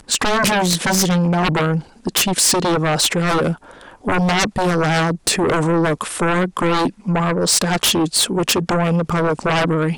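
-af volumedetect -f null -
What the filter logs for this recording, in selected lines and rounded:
mean_volume: -17.8 dB
max_volume: -8.2 dB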